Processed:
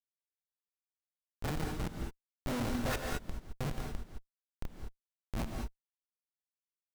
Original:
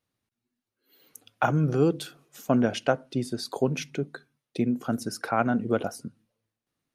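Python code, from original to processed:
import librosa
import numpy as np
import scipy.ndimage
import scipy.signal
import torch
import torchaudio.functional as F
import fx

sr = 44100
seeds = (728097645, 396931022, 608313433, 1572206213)

y = fx.lower_of_two(x, sr, delay_ms=1.4)
y = fx.doppler_pass(y, sr, speed_mps=6, closest_m=5.9, pass_at_s=3.1)
y = fx.peak_eq(y, sr, hz=2200.0, db=10.5, octaves=0.42)
y = fx.notch(y, sr, hz=700.0, q=12.0)
y = fx.sample_hold(y, sr, seeds[0], rate_hz=3200.0, jitter_pct=0)
y = fx.dispersion(y, sr, late='highs', ms=85.0, hz=1200.0)
y = fx.vibrato(y, sr, rate_hz=6.8, depth_cents=7.4)
y = fx.schmitt(y, sr, flips_db=-25.0)
y = fx.rev_gated(y, sr, seeds[1], gate_ms=240, shape='rising', drr_db=2.5)
y = y * librosa.db_to_amplitude(1.0)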